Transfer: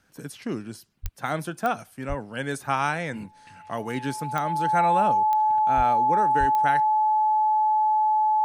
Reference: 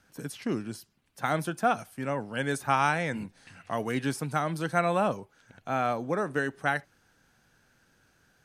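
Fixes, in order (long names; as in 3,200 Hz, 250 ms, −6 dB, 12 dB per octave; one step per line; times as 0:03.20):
click removal
notch filter 860 Hz, Q 30
high-pass at the plosives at 0:01.02/0:02.08/0:05.76/0:06.39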